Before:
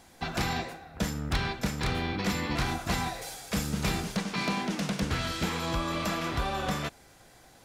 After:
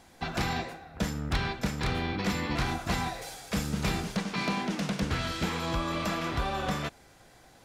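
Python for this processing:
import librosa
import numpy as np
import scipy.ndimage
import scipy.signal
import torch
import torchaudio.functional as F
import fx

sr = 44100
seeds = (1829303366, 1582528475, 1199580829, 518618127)

y = fx.high_shelf(x, sr, hz=6600.0, db=-5.0)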